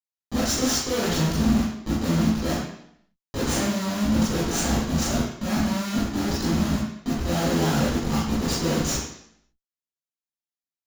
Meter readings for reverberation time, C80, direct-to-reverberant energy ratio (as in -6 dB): 0.70 s, 4.0 dB, -8.5 dB